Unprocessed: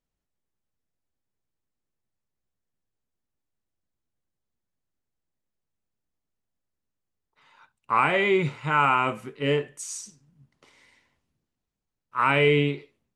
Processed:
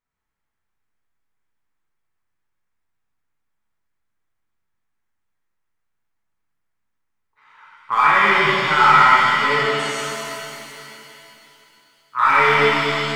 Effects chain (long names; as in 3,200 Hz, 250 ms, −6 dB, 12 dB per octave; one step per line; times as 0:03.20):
hard clipping −17.5 dBFS, distortion −12 dB
flat-topped bell 1,400 Hz +10.5 dB
reverb with rising layers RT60 3 s, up +7 semitones, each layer −8 dB, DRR −7 dB
level −6 dB